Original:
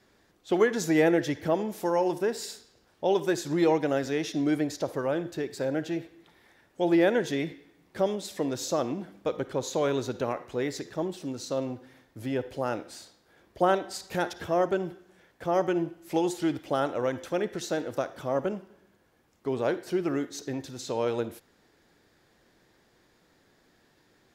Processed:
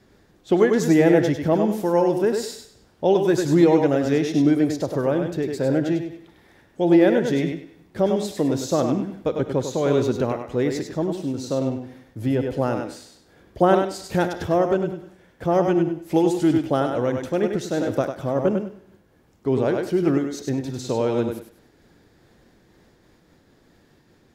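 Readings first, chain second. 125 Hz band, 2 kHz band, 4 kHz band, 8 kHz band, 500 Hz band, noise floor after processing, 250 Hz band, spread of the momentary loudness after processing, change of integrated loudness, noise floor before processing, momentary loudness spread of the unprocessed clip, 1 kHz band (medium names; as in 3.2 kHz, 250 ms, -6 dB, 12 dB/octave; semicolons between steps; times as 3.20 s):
+11.0 dB, +3.0 dB, +3.0 dB, +2.5 dB, +7.0 dB, -58 dBFS, +9.0 dB, 11 LU, +7.5 dB, -65 dBFS, 11 LU, +5.0 dB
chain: bass shelf 390 Hz +10.5 dB; thinning echo 99 ms, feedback 25%, high-pass 190 Hz, level -5.5 dB; random flutter of the level, depth 55%; trim +4.5 dB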